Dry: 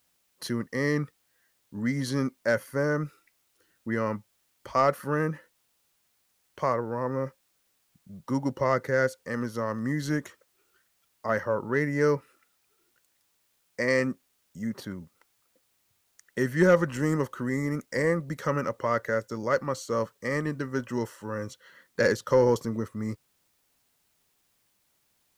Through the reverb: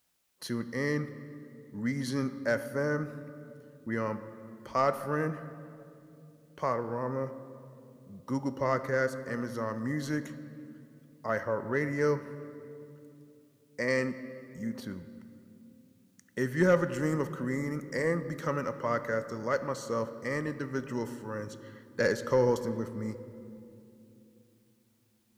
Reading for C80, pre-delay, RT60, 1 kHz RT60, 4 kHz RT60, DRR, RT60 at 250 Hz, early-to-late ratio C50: 13.0 dB, 4 ms, 2.8 s, 2.4 s, 1.6 s, 11.0 dB, 4.4 s, 12.5 dB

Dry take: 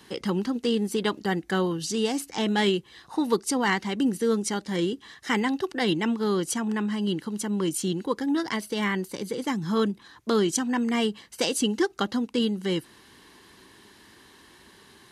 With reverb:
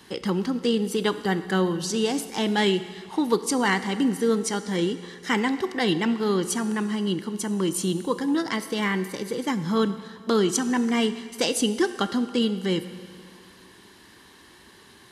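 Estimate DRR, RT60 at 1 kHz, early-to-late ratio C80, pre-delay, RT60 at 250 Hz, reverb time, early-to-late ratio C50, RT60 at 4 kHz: 11.0 dB, 2.0 s, 13.0 dB, 17 ms, 2.0 s, 2.0 s, 12.5 dB, 2.0 s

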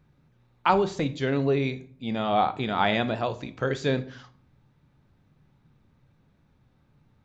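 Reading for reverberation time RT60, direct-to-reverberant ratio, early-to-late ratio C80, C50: 0.50 s, 11.0 dB, 21.0 dB, 16.5 dB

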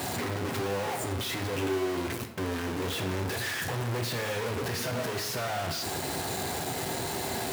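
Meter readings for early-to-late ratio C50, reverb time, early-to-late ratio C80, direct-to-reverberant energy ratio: 8.0 dB, 0.90 s, 11.0 dB, 4.0 dB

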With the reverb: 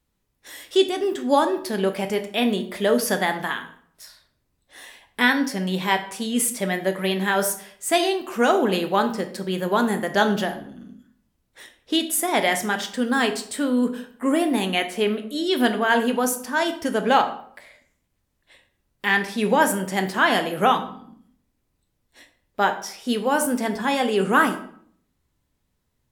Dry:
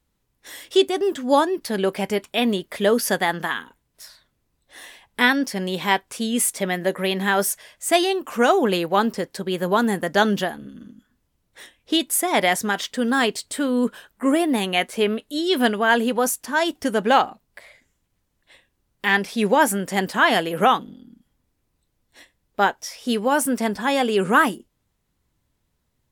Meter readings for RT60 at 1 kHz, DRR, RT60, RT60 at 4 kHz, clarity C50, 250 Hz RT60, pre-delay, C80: 0.60 s, 7.0 dB, 0.60 s, 0.40 s, 11.5 dB, 0.65 s, 15 ms, 15.0 dB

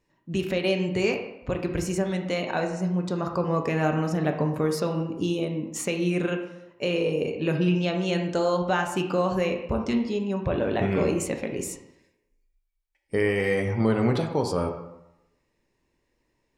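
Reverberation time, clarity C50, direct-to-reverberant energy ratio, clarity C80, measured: 0.85 s, 7.0 dB, 3.0 dB, 9.5 dB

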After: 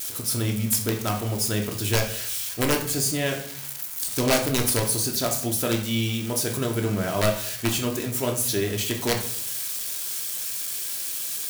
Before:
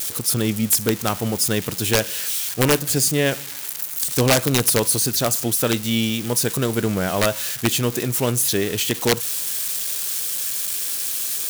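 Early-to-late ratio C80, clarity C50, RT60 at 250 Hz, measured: 12.5 dB, 8.0 dB, 0.70 s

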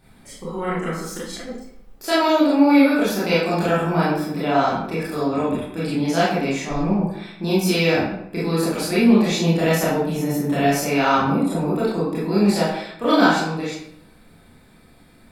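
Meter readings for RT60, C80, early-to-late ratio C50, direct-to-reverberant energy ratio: 0.75 s, 5.0 dB, 0.0 dB, -9.0 dB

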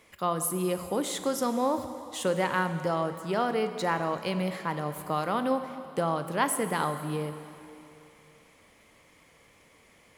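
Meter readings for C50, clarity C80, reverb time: 9.5 dB, 10.0 dB, 2.9 s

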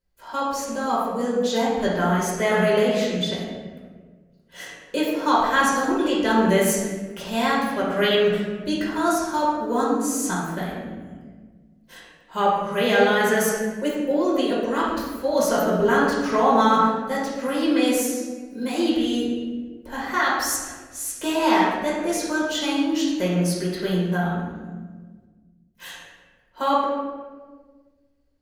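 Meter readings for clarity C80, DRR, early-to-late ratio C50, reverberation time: 2.5 dB, -6.5 dB, 0.0 dB, 1.5 s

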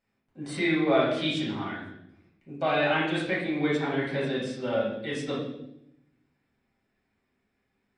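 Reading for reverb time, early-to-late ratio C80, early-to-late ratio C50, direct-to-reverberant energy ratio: 0.80 s, 6.5 dB, 2.0 dB, -7.5 dB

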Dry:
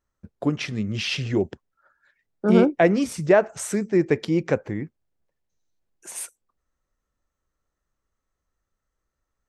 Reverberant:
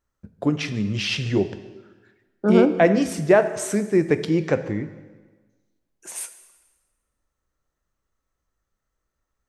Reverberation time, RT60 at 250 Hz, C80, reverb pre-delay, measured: 1.3 s, 1.3 s, 14.0 dB, 5 ms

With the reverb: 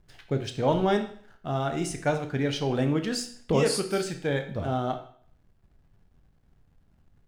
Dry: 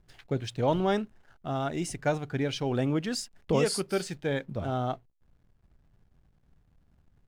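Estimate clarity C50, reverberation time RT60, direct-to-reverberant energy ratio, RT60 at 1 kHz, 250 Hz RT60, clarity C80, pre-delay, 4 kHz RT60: 10.0 dB, 0.55 s, 6.0 dB, 0.55 s, 0.60 s, 13.5 dB, 16 ms, 0.55 s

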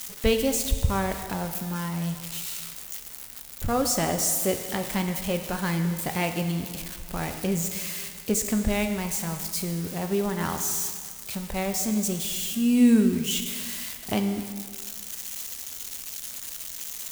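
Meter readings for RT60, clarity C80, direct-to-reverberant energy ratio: 1.9 s, 9.0 dB, 6.0 dB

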